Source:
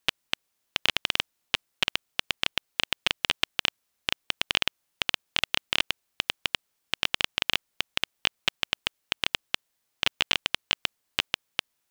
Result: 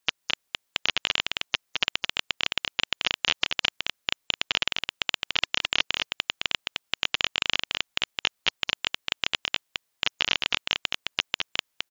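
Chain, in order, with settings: spectral gate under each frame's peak -25 dB strong; low shelf 440 Hz -3.5 dB; echo 0.214 s -4 dB

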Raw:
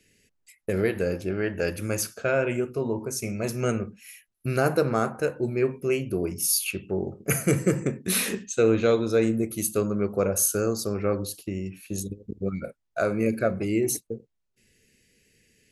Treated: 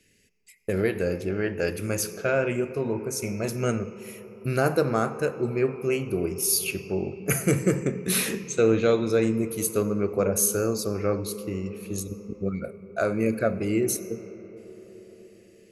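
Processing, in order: on a send: ripple EQ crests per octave 0.8, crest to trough 12 dB + reverb RT60 5.1 s, pre-delay 45 ms, DRR 12.5 dB

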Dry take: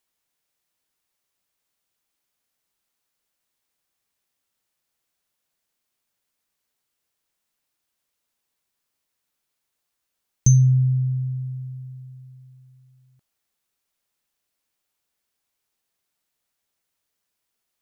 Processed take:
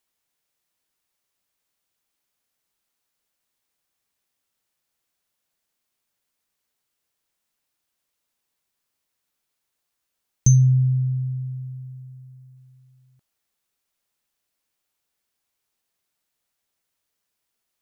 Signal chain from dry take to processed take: 10.55–12.57 bell 3200 Hz -7 dB 1.5 oct

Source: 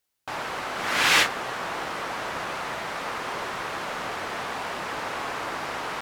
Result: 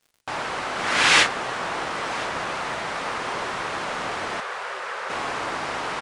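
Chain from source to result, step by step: downsampling 22050 Hz; crackle 72/s -49 dBFS; 4.4–5.1 rippled Chebyshev high-pass 370 Hz, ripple 6 dB; echo 1.026 s -20.5 dB; gain +3 dB

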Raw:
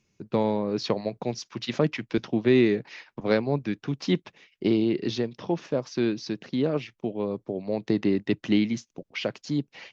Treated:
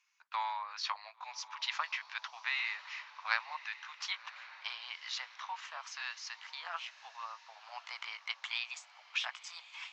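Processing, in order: gliding pitch shift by +2.5 st starting unshifted; steep high-pass 940 Hz 48 dB/oct; high shelf 3700 Hz -10.5 dB; on a send: diffused feedback echo 1.087 s, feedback 55%, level -16 dB; on the sum: gain +3.5 dB

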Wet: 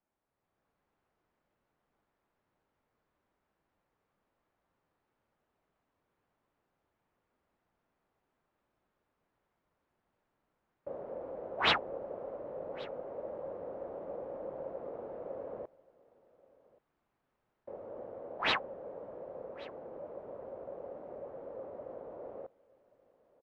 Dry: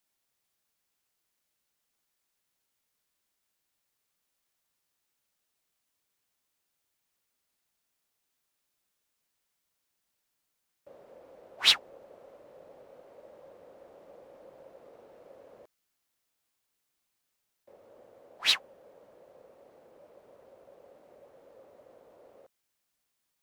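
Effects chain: LPF 1100 Hz 12 dB/oct; AGC gain up to 8 dB; echo 1.129 s -23 dB; gain +3.5 dB

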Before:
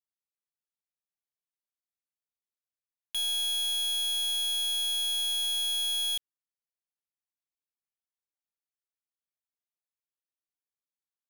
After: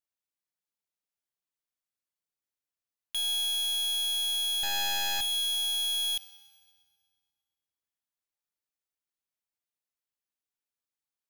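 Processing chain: 4.63–5.21 median filter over 15 samples; FDN reverb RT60 2 s, low-frequency decay 1.25×, high-frequency decay 0.9×, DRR 11 dB

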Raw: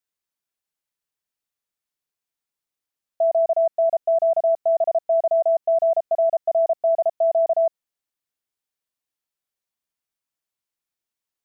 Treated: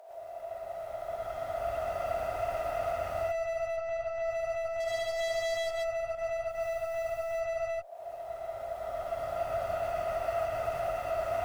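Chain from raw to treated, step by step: per-bin compression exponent 0.4; recorder AGC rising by 8.2 dB/s; steep high-pass 370 Hz 48 dB/oct; compressor, threshold -32 dBFS, peak gain reduction 15 dB; limiter -34.5 dBFS, peak gain reduction 10.5 dB; 4.79–5.71 sample leveller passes 3; one-sided clip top -49.5 dBFS, bottom -37 dBFS; 3.64–4.21 air absorption 61 m; 6.49–7.28 requantised 12-bit, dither triangular; non-linear reverb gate 0.15 s rising, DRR -7 dB; gain +4 dB

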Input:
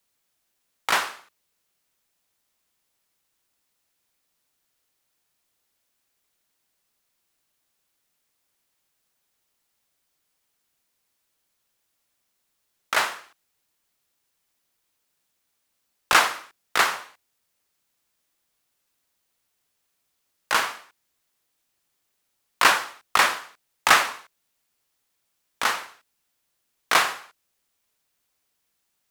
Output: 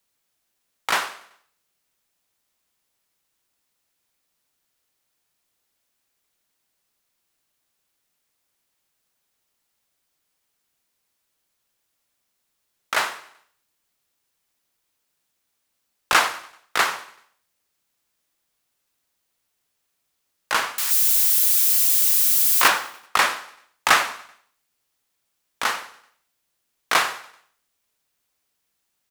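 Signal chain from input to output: 20.78–22.68 switching spikes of -14.5 dBFS; on a send: feedback echo 96 ms, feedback 53%, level -22 dB

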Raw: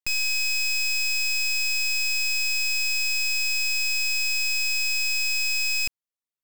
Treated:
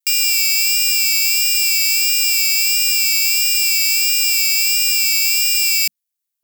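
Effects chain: tilt +4.5 dB/oct; ring modulator 200 Hz; vibrato 1.5 Hz 46 cents; gain +1.5 dB

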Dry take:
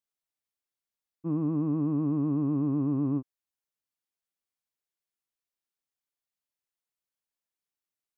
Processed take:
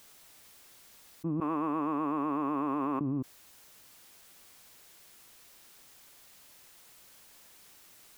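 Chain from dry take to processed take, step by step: 1.4–3.01 HPF 1100 Hz 12 dB/oct; fast leveller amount 100%; gain -5 dB

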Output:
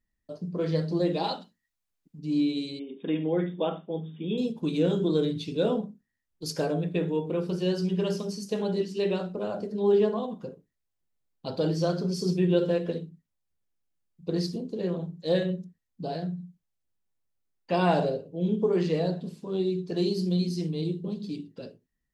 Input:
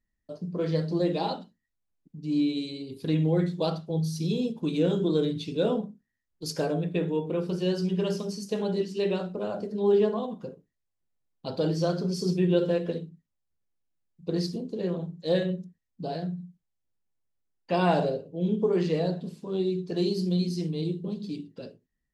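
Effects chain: 1.24–2.19 tilt shelf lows -4.5 dB, about 800 Hz; 2.79–4.38 brick-wall FIR band-pass 170–3700 Hz

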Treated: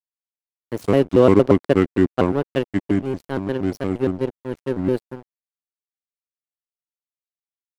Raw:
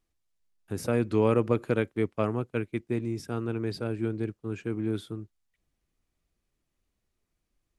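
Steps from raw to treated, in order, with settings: crossover distortion -37 dBFS; dynamic EQ 340 Hz, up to +6 dB, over -37 dBFS, Q 1.1; shaped vibrato square 4.3 Hz, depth 250 cents; gain +7.5 dB

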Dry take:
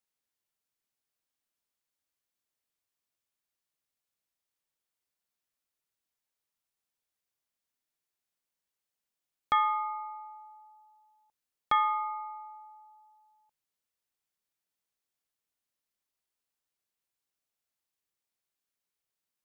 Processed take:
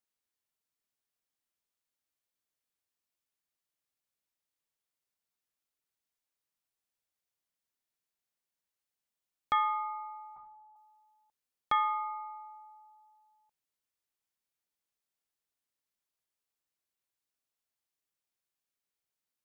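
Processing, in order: 10.36–10.76 LPC vocoder at 8 kHz whisper; gain -2.5 dB

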